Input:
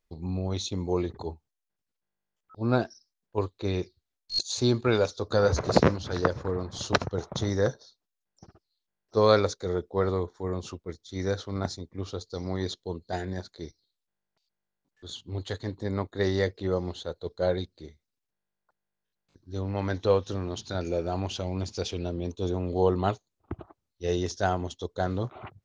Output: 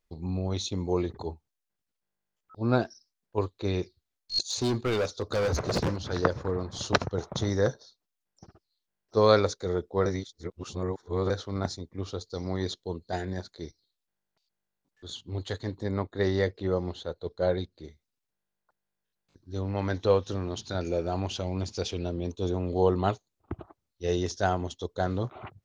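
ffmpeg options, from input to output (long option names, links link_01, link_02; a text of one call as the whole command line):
ffmpeg -i in.wav -filter_complex "[0:a]asettb=1/sr,asplit=3[link_01][link_02][link_03];[link_01]atrim=end=4.464[link_04];[link_02]atrim=start=4.46:end=5.96,asetpts=PTS-STARTPTS,afade=type=in:duration=0.004:curve=qsin,afade=type=out:start_time=1.496:duration=0.004:curve=qsin,asoftclip=type=hard:threshold=-23dB[link_05];[link_03]atrim=start=5.956[link_06];[link_04][link_05]acrossfade=duration=0.004:curve1=hsin:curve2=qsin[link_07];[link_07][link_06]acrossfade=duration=0.004:curve1=qsin:curve2=hsin,asettb=1/sr,asplit=3[link_08][link_09][link_10];[link_08]atrim=end=15.884[link_11];[link_09]atrim=start=15.88:end=17.84,asetpts=PTS-STARTPTS,afade=type=in:duration=0.004:curve=qsin,afade=type=out:start_time=1.956:duration=0.004:curve=qsin,highshelf=frequency=6400:gain=-9.5[link_12];[link_10]atrim=start=17.836[link_13];[link_11][link_12]acrossfade=duration=0.004:curve1=hsin:curve2=qsin[link_14];[link_14][link_13]acrossfade=duration=0.004:curve1=qsin:curve2=hsin,asplit=3[link_15][link_16][link_17];[link_15]atrim=end=10.062[link_18];[link_16]atrim=start=10.058:end=11.302,asetpts=PTS-STARTPTS,areverse[link_19];[link_17]atrim=start=11.298[link_20];[link_18][link_19]acrossfade=duration=0.004:curve1=hsin:curve2=hsin[link_21];[link_21][link_20]acrossfade=duration=0.004:curve1=hsin:curve2=hsin" out.wav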